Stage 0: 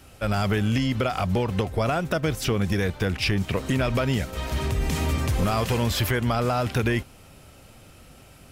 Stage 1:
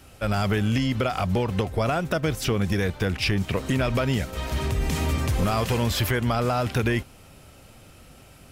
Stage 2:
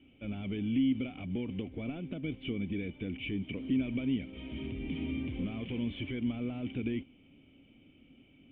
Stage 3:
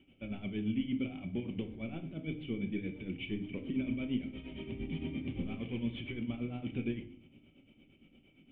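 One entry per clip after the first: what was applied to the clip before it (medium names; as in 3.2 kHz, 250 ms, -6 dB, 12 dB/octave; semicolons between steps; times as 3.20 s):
no audible change
overdrive pedal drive 13 dB, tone 2.3 kHz, clips at -14 dBFS; cascade formant filter i
tremolo 8.7 Hz, depth 77%; simulated room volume 570 m³, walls furnished, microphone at 1.1 m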